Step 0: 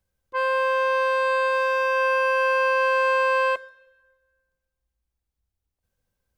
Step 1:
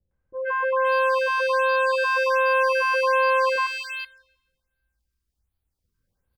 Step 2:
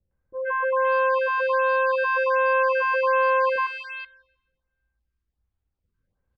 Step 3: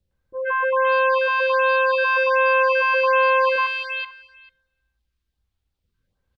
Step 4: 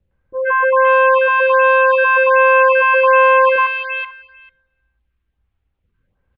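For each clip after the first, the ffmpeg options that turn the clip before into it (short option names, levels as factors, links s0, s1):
-filter_complex "[0:a]equalizer=f=4900:t=o:w=0.21:g=4.5,acrossover=split=570|2100[s0][s1][s2];[s1]adelay=110[s3];[s2]adelay=490[s4];[s0][s3][s4]amix=inputs=3:normalize=0,afftfilt=real='re*(1-between(b*sr/1024,630*pow(7000/630,0.5+0.5*sin(2*PI*1.3*pts/sr))/1.41,630*pow(7000/630,0.5+0.5*sin(2*PI*1.3*pts/sr))*1.41))':imag='im*(1-between(b*sr/1024,630*pow(7000/630,0.5+0.5*sin(2*PI*1.3*pts/sr))/1.41,630*pow(7000/630,0.5+0.5*sin(2*PI*1.3*pts/sr))*1.41))':win_size=1024:overlap=0.75,volume=1.5"
-af "lowpass=2400"
-af "equalizer=f=3700:t=o:w=1.3:g=9.5,aecho=1:1:444:0.0944,volume=1.26"
-af "lowpass=f=2700:w=0.5412,lowpass=f=2700:w=1.3066,volume=2.24"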